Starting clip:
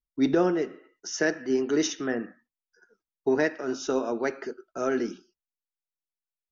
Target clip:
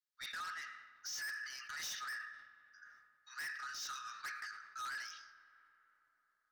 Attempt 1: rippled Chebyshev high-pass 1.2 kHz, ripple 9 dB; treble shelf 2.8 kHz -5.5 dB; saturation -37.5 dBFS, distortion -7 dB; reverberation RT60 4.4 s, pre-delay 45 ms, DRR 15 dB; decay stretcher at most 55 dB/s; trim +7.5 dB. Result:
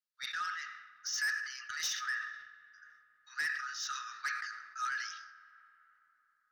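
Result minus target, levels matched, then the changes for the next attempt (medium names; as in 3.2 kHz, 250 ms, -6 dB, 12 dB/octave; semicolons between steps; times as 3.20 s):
saturation: distortion -6 dB
change: saturation -48.5 dBFS, distortion -1 dB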